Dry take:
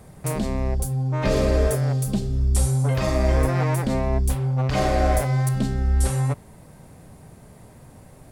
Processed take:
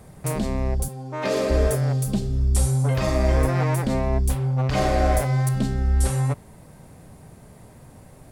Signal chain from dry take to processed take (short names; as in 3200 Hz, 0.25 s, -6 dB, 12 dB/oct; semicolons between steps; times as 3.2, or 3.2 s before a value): 0.88–1.5 HPF 270 Hz 12 dB/oct